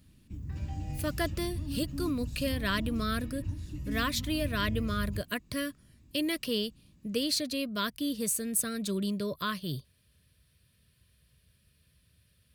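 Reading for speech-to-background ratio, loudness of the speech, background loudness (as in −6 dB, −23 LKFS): 6.0 dB, −32.5 LKFS, −38.5 LKFS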